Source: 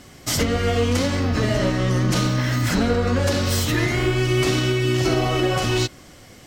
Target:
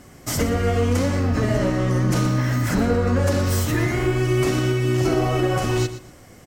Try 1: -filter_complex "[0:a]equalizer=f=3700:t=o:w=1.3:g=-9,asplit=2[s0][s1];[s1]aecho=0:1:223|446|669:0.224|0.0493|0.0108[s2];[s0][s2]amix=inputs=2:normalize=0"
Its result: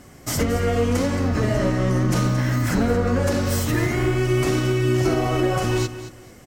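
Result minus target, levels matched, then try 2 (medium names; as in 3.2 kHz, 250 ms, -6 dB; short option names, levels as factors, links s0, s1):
echo 104 ms late
-filter_complex "[0:a]equalizer=f=3700:t=o:w=1.3:g=-9,asplit=2[s0][s1];[s1]aecho=0:1:119|238|357:0.224|0.0493|0.0108[s2];[s0][s2]amix=inputs=2:normalize=0"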